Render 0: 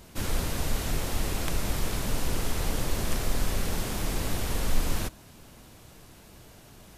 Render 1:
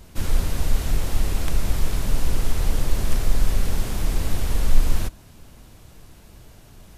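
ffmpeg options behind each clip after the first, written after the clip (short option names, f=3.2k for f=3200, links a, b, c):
-af "lowshelf=f=87:g=11"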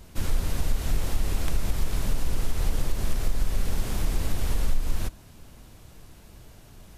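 -af "acompressor=threshold=-15dB:ratio=5,volume=-2dB"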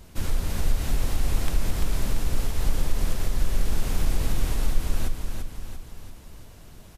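-af "aecho=1:1:341|682|1023|1364|1705|2046:0.531|0.271|0.138|0.0704|0.0359|0.0183"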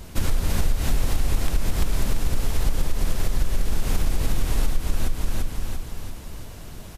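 -af "acompressor=threshold=-23dB:ratio=6,volume=8dB"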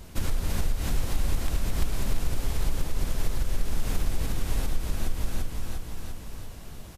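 -af "aecho=1:1:700:0.398,volume=-5dB"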